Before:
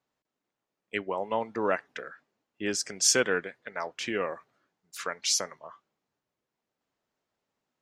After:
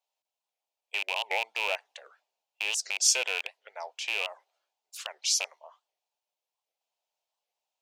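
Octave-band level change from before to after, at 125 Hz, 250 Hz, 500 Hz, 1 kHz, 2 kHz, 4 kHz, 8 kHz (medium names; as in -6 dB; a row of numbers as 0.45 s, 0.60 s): under -40 dB, under -25 dB, -9.5 dB, -4.0 dB, +2.0 dB, +2.0 dB, 0.0 dB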